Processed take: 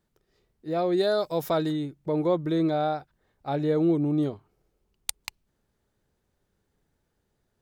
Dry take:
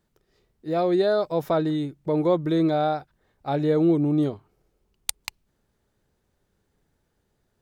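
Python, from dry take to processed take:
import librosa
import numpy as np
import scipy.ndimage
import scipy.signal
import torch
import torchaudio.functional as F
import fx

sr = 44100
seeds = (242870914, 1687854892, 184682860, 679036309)

y = fx.high_shelf(x, sr, hz=fx.line((0.96, 4500.0), (1.71, 3100.0)), db=12.0, at=(0.96, 1.71), fade=0.02)
y = y * librosa.db_to_amplitude(-3.0)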